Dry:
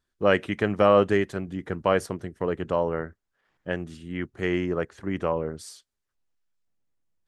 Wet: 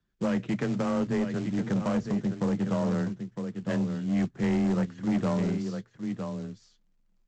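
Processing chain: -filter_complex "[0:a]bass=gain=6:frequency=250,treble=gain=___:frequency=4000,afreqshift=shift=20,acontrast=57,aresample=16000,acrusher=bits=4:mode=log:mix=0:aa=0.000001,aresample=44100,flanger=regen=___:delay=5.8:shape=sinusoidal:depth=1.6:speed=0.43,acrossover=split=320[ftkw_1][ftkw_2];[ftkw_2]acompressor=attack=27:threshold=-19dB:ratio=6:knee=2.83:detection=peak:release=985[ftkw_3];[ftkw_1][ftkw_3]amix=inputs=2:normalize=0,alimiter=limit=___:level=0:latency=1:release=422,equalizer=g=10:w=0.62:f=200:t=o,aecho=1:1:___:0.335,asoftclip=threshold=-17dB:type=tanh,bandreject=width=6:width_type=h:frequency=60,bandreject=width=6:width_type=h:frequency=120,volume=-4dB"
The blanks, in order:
-6, -51, -14dB, 958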